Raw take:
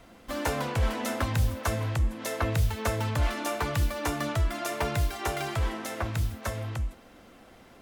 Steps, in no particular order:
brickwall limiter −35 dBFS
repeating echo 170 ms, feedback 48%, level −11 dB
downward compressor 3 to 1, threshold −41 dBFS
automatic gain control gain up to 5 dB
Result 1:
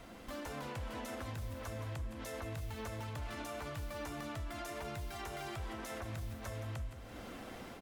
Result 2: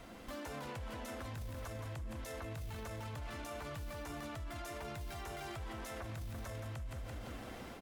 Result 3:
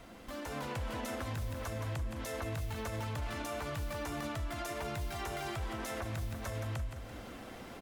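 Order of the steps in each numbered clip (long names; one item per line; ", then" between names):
automatic gain control, then downward compressor, then brickwall limiter, then repeating echo
automatic gain control, then repeating echo, then brickwall limiter, then downward compressor
downward compressor, then repeating echo, then brickwall limiter, then automatic gain control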